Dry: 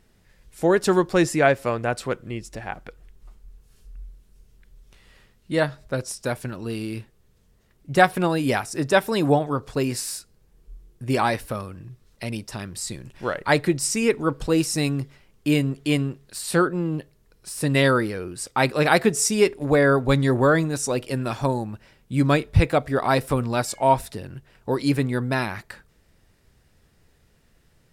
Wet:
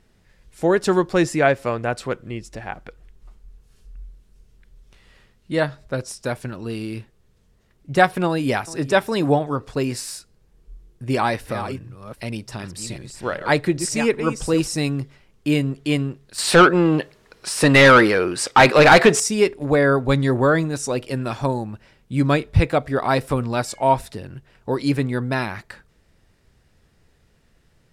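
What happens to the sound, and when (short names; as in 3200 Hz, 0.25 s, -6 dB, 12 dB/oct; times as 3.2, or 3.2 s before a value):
8.26–8.87 echo throw 0.41 s, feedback 20%, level -17 dB
11.04–14.74 reverse delay 0.389 s, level -9 dB
16.38–19.2 overdrive pedal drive 23 dB, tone 3500 Hz, clips at -2 dBFS
whole clip: high shelf 12000 Hz -11 dB; gain +1 dB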